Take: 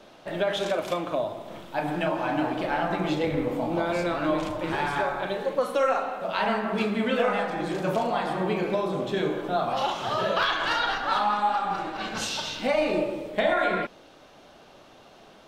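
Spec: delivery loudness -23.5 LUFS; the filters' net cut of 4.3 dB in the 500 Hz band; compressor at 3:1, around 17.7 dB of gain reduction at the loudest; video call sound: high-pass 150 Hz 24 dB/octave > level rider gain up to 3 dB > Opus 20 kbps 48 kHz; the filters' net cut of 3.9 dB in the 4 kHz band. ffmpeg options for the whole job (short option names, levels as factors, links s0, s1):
-af "equalizer=f=500:t=o:g=-5.5,equalizer=f=4000:t=o:g=-5,acompressor=threshold=0.00398:ratio=3,highpass=f=150:w=0.5412,highpass=f=150:w=1.3066,dynaudnorm=m=1.41,volume=13.3" -ar 48000 -c:a libopus -b:a 20k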